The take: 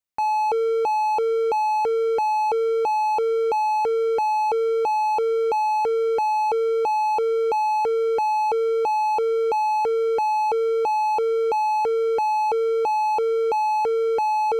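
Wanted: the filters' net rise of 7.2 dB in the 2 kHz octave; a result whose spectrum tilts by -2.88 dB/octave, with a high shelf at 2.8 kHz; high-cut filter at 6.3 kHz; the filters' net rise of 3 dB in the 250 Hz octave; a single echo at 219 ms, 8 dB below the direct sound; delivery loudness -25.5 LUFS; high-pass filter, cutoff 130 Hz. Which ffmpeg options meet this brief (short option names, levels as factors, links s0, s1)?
-af "highpass=130,lowpass=6300,equalizer=f=250:t=o:g=5,equalizer=f=2000:t=o:g=5,highshelf=f=2800:g=8.5,aecho=1:1:219:0.398,volume=0.501"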